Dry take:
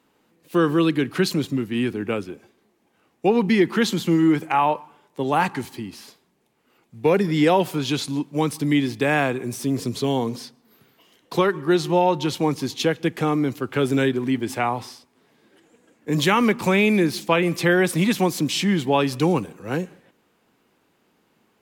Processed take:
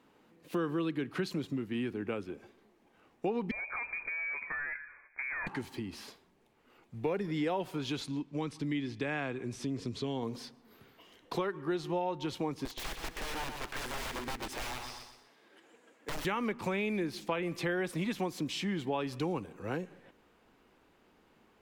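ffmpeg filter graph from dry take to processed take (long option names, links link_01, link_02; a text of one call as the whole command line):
ffmpeg -i in.wav -filter_complex "[0:a]asettb=1/sr,asplit=3[link_01][link_02][link_03];[link_01]atrim=end=3.514[link_04];[link_02]atrim=start=3.51:end=5.47,asetpts=PTS-STARTPTS,afade=type=in:duration=0.004:curve=qsin,afade=type=out:start_time=1.956:duration=0.004:curve=qsin,acompressor=threshold=-23dB:ratio=5:attack=3.2:release=140:knee=1:detection=peak,volume=25.5dB,asoftclip=hard,volume=-25.5dB,lowpass=frequency=2200:width_type=q:width=0.5098,lowpass=frequency=2200:width_type=q:width=0.6013,lowpass=frequency=2200:width_type=q:width=0.9,lowpass=frequency=2200:width_type=q:width=2.563,afreqshift=-2600[link_05];[link_03]atrim=start=5.466[link_06];[link_04][link_05]acrossfade=duration=0.004:curve1=hsin:curve2=qsin[link_07];[link_07][link_06]acrossfade=duration=0.004:curve1=qsin:curve2=hsin,asettb=1/sr,asplit=3[link_08][link_09][link_10];[link_08]atrim=end=8.074[link_11];[link_09]atrim=start=8.07:end=10.23,asetpts=PTS-STARTPTS,afade=type=in:duration=0.004:curve=qsin,afade=type=out:start_time=2.156:duration=0.004:curve=qsin,lowpass=7000,equalizer=frequency=720:width_type=o:width=1.8:gain=-5[link_12];[link_10]atrim=start=10.226[link_13];[link_11][link_12]acrossfade=duration=0.004:curve1=hsin:curve2=qsin[link_14];[link_14][link_13]acrossfade=duration=0.004:curve1=qsin:curve2=hsin,asettb=1/sr,asplit=3[link_15][link_16][link_17];[link_15]atrim=end=12.654[link_18];[link_16]atrim=start=12.65:end=16.25,asetpts=PTS-STARTPTS,afade=type=in:duration=0.004:curve=qsin,afade=type=out:start_time=3.596:duration=0.004:curve=qsin,highpass=frequency=600:poles=1,aeval=exprs='(mod(18.8*val(0)+1,2)-1)/18.8':channel_layout=same,aecho=1:1:123|246|369|492:0.398|0.139|0.0488|0.0171,atrim=end_sample=158760[link_19];[link_17]atrim=start=16.246[link_20];[link_18][link_19]acrossfade=duration=0.004:curve1=hsin:curve2=qsin[link_21];[link_21][link_20]acrossfade=duration=0.004:curve1=qsin:curve2=hsin,asubboost=boost=5:cutoff=58,acompressor=threshold=-37dB:ratio=2.5,highshelf=frequency=5100:gain=-9.5" out.wav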